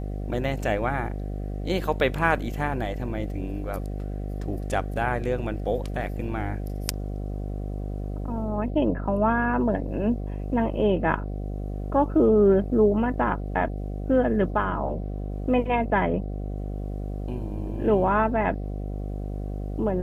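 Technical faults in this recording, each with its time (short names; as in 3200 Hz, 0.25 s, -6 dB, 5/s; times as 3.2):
buzz 50 Hz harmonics 15 -31 dBFS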